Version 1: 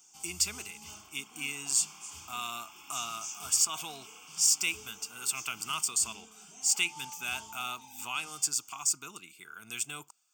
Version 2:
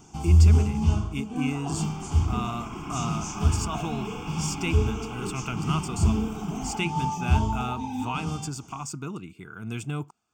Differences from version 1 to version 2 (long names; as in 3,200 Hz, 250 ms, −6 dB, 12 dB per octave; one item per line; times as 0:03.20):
speech −10.5 dB
second sound: entry +0.95 s
master: remove first difference